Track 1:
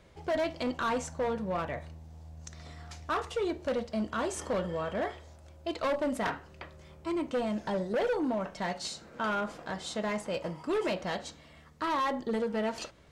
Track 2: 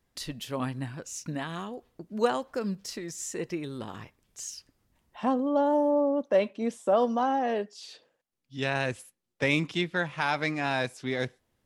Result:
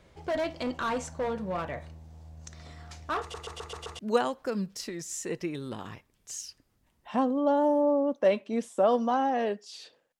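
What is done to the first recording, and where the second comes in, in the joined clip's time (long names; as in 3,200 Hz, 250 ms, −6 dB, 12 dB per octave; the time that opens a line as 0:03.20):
track 1
0:03.21: stutter in place 0.13 s, 6 plays
0:03.99: continue with track 2 from 0:02.08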